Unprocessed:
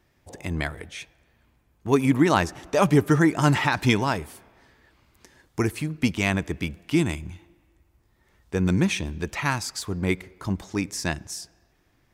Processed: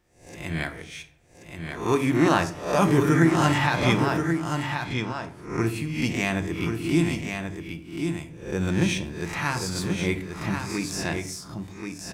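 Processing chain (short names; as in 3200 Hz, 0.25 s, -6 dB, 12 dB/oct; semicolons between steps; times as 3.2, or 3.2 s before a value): spectral swells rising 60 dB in 0.53 s; in parallel at -8 dB: crossover distortion -41.5 dBFS; 3.76–5.67 on the sum: air absorption 58 m; echo 1.082 s -6 dB; shoebox room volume 510 m³, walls furnished, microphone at 0.87 m; gain -6.5 dB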